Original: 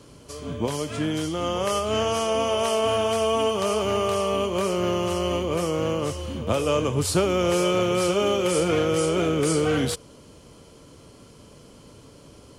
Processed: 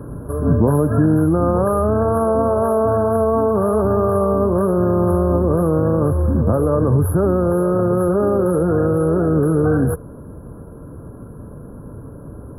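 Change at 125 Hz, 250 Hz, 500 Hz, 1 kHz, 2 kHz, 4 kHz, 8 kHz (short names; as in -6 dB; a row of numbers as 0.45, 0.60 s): +12.5 dB, +9.5 dB, +6.0 dB, +4.5 dB, -3.0 dB, under -40 dB, -8.5 dB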